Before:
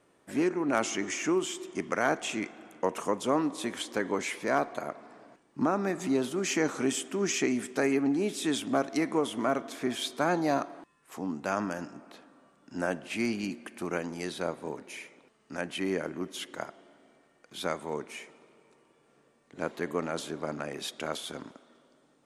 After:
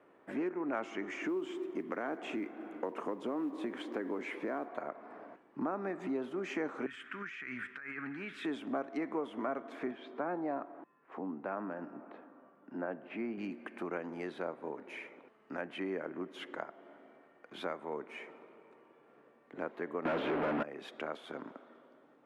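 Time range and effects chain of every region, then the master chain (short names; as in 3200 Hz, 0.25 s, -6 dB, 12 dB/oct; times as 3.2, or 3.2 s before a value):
1.21–4.68 bell 300 Hz +8 dB 1.1 oct + compressor 2.5:1, threshold -27 dBFS + modulation noise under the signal 24 dB
6.86–8.45 EQ curve 110 Hz 0 dB, 190 Hz -11 dB, 350 Hz -21 dB, 760 Hz -21 dB, 1500 Hz +7 dB, 6100 Hz -10 dB + negative-ratio compressor -40 dBFS
9.91–13.38 HPF 130 Hz + tape spacing loss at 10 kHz 28 dB
20.05–20.63 zero-crossing step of -38 dBFS + Chebyshev low-pass 3000 Hz, order 3 + sample leveller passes 5
whole clip: three-band isolator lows -13 dB, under 210 Hz, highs -24 dB, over 2500 Hz; compressor 2:1, threshold -45 dBFS; gain +3.5 dB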